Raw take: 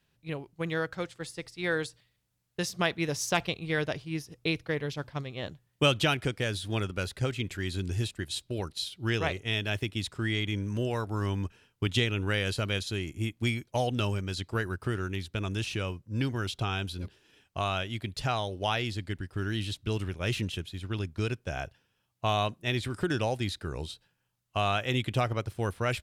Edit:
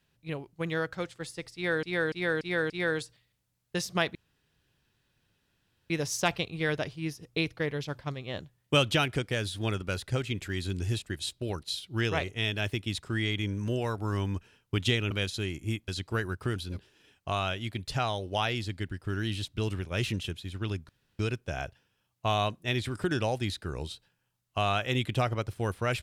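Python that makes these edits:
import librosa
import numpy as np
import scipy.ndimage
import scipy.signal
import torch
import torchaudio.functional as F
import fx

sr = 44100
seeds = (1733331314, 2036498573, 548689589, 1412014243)

y = fx.edit(x, sr, fx.repeat(start_s=1.54, length_s=0.29, count=5),
    fx.insert_room_tone(at_s=2.99, length_s=1.75),
    fx.cut(start_s=12.2, length_s=0.44),
    fx.cut(start_s=13.41, length_s=0.88),
    fx.cut(start_s=14.97, length_s=1.88),
    fx.insert_room_tone(at_s=21.18, length_s=0.3), tone=tone)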